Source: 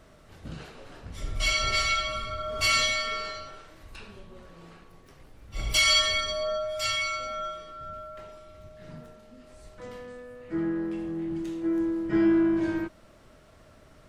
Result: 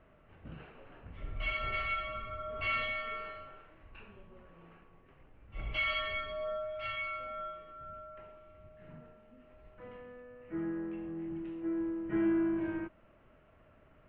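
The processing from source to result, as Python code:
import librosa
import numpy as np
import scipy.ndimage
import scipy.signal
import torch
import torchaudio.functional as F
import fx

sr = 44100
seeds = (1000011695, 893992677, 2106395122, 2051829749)

y = scipy.signal.sosfilt(scipy.signal.ellip(4, 1.0, 80, 2800.0, 'lowpass', fs=sr, output='sos'), x)
y = y * librosa.db_to_amplitude(-7.0)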